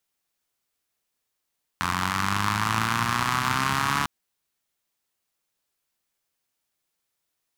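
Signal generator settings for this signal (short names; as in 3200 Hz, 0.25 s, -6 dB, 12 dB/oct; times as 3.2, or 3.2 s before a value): four-cylinder engine model, changing speed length 2.25 s, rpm 2600, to 4300, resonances 110/180/1100 Hz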